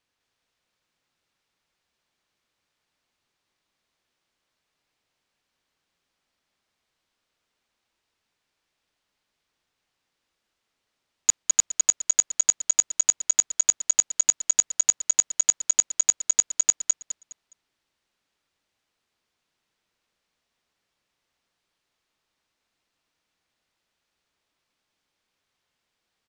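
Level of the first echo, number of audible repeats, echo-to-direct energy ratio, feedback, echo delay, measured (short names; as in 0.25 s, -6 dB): -3.0 dB, 3, -2.5 dB, 27%, 0.207 s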